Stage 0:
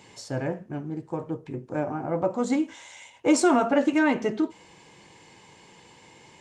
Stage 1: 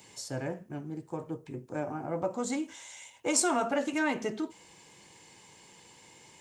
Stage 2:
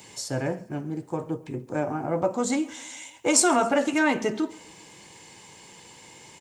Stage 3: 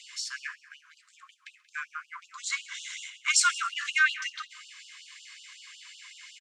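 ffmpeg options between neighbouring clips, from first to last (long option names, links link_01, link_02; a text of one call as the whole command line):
ffmpeg -i in.wav -filter_complex "[0:a]aemphasis=mode=production:type=50fm,acrossover=split=500|1300[link_01][link_02][link_03];[link_01]alimiter=limit=-23dB:level=0:latency=1[link_04];[link_04][link_02][link_03]amix=inputs=3:normalize=0,volume=-5.5dB" out.wav
ffmpeg -i in.wav -af "aecho=1:1:134|268|402|536:0.0668|0.0374|0.021|0.0117,volume=7dB" out.wav
ffmpeg -i in.wav -filter_complex "[0:a]highpass=760,lowpass=4900,asplit=2[link_01][link_02];[link_02]adelay=180.8,volume=-18dB,highshelf=frequency=4000:gain=-4.07[link_03];[link_01][link_03]amix=inputs=2:normalize=0,afftfilt=real='re*gte(b*sr/1024,980*pow(2800/980,0.5+0.5*sin(2*PI*5.4*pts/sr)))':imag='im*gte(b*sr/1024,980*pow(2800/980,0.5+0.5*sin(2*PI*5.4*pts/sr)))':win_size=1024:overlap=0.75,volume=5dB" out.wav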